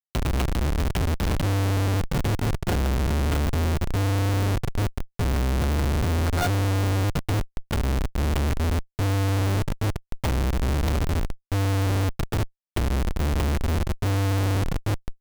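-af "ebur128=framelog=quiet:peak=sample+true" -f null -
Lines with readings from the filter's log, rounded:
Integrated loudness:
  I:         -25.4 LUFS
  Threshold: -35.4 LUFS
Loudness range:
  LRA:         1.5 LU
  Threshold: -45.4 LUFS
  LRA low:   -26.2 LUFS
  LRA high:  -24.7 LUFS
Sample peak:
  Peak:      -19.5 dBFS
True peak:
  Peak:      -18.1 dBFS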